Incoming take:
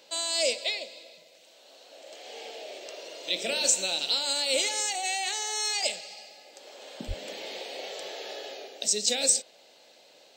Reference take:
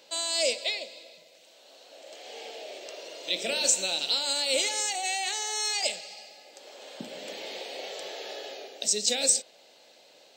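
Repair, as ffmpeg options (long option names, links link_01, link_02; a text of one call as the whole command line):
ffmpeg -i in.wav -filter_complex "[0:a]asplit=3[link_01][link_02][link_03];[link_01]afade=type=out:start_time=7.07:duration=0.02[link_04];[link_02]highpass=frequency=140:width=0.5412,highpass=frequency=140:width=1.3066,afade=type=in:start_time=7.07:duration=0.02,afade=type=out:start_time=7.19:duration=0.02[link_05];[link_03]afade=type=in:start_time=7.19:duration=0.02[link_06];[link_04][link_05][link_06]amix=inputs=3:normalize=0" out.wav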